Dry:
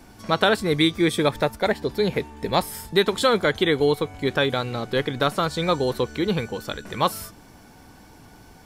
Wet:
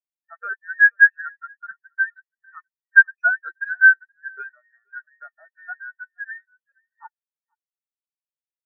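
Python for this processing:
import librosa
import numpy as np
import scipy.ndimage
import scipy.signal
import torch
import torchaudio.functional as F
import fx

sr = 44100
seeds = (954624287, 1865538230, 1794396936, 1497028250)

y = fx.band_invert(x, sr, width_hz=2000)
y = y + 10.0 ** (-9.0 / 20.0) * np.pad(y, (int(476 * sr / 1000.0), 0))[:len(y)]
y = fx.spectral_expand(y, sr, expansion=4.0)
y = y * librosa.db_to_amplitude(2.0)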